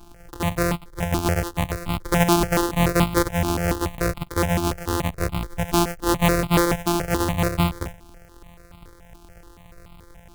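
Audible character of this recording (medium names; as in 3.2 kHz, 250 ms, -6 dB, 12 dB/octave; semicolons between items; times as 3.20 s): a buzz of ramps at a fixed pitch in blocks of 256 samples; notches that jump at a steady rate 7 Hz 520–1700 Hz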